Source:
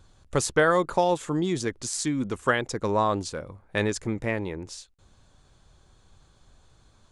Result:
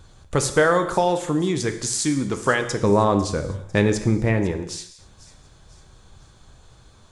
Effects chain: 2.82–4.52 low shelf 420 Hz +8.5 dB; in parallel at +2.5 dB: compressor, threshold -31 dBFS, peak gain reduction 15 dB; on the sum: thin delay 0.499 s, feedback 43%, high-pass 4200 Hz, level -16 dB; non-linear reverb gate 0.29 s falling, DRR 7 dB

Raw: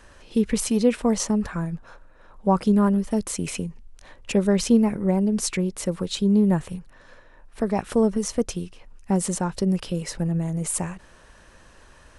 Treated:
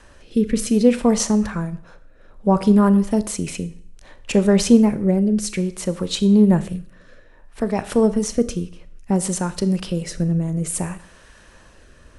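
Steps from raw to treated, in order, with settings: Schroeder reverb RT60 0.56 s, combs from 26 ms, DRR 13 dB; rotary speaker horn 0.6 Hz; gain +5 dB

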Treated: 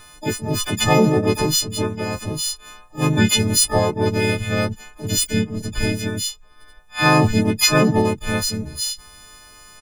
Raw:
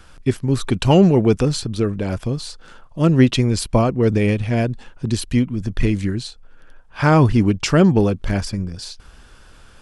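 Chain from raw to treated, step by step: frequency quantiser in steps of 6 st; harmoniser -3 st -4 dB, +5 st -15 dB, +12 st -7 dB; gain -5.5 dB

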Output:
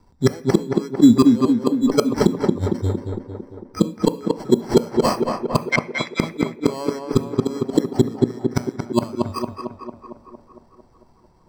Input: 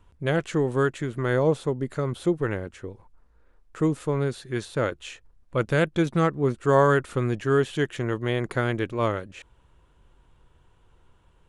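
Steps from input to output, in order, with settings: block floating point 5-bit; spectral noise reduction 20 dB; sample-and-hold 12×; 5.57–6.2 ladder band-pass 2300 Hz, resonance 75%; flipped gate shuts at -24 dBFS, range -35 dB; tape echo 0.227 s, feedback 70%, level -3.5 dB, low-pass 2200 Hz; reverb RT60 0.45 s, pre-delay 3 ms, DRR 13 dB; maximiser +17.5 dB; gain -1 dB

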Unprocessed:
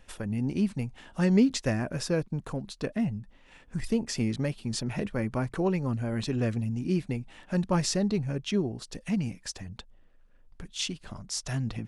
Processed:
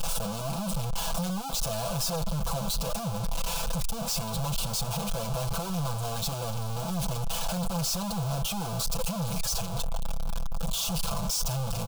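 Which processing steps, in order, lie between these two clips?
infinite clipping; fixed phaser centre 790 Hz, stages 4; comb 6 ms, depth 91%

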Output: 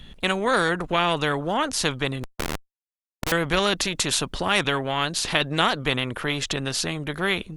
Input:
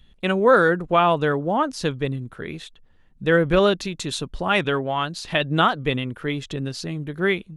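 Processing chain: 2.23–3.32 Schmitt trigger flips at -26.5 dBFS; spectral compressor 2:1

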